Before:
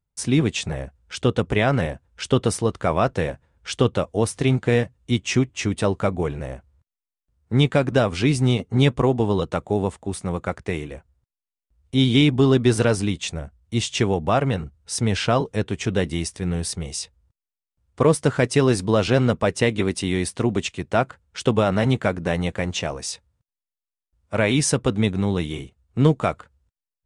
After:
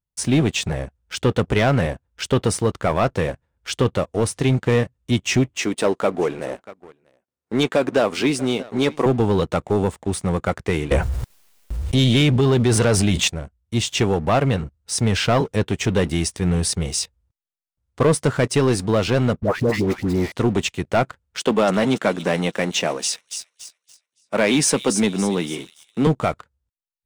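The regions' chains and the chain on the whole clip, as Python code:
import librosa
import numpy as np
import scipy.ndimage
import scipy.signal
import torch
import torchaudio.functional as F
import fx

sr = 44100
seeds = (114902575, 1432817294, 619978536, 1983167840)

y = fx.chain(x, sr, fx.cheby1_highpass(hz=310.0, order=2),
    fx.echo_single(ms=638, db=-21.0), at=(5.57, 9.06))
y = fx.chain(y, sr, fx.peak_eq(hz=280.0, db=-6.0, octaves=0.25),
    fx.env_flatten(amount_pct=70), at=(10.91, 13.28))
y = fx.chain(y, sr, fx.median_filter(points=15),
    fx.dispersion(late='highs', ms=122.0, hz=910.0), at=(19.4, 20.32))
y = fx.chain(y, sr, fx.highpass(hz=180.0, slope=24),
    fx.echo_wet_highpass(ms=283, feedback_pct=48, hz=4300.0, wet_db=-6.0), at=(21.39, 26.07))
y = fx.rider(y, sr, range_db=4, speed_s=2.0)
y = fx.leveller(y, sr, passes=2)
y = y * 10.0 ** (-5.0 / 20.0)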